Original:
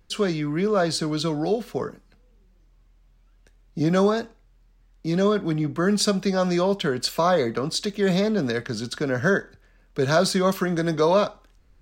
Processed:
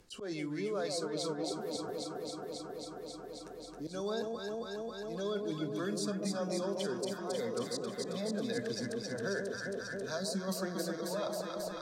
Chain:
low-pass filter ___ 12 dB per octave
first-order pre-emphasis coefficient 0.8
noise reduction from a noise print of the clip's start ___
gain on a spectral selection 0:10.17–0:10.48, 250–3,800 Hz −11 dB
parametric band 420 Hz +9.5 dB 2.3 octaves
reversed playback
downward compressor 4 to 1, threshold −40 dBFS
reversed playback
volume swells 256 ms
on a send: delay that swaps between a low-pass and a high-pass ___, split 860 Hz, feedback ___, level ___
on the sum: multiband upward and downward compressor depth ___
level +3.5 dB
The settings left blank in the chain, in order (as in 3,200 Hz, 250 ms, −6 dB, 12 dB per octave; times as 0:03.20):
11,000 Hz, 10 dB, 135 ms, 84%, −3 dB, 70%